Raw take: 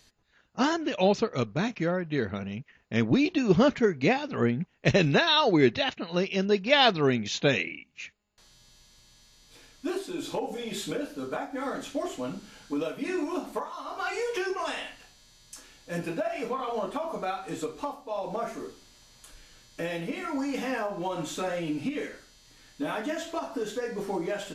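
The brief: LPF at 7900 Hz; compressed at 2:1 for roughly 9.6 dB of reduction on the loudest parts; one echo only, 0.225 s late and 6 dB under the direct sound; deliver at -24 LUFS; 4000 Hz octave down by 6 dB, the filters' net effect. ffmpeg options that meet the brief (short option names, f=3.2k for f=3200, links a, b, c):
-af "lowpass=7.9k,equalizer=f=4k:t=o:g=-7.5,acompressor=threshold=-35dB:ratio=2,aecho=1:1:225:0.501,volume=11dB"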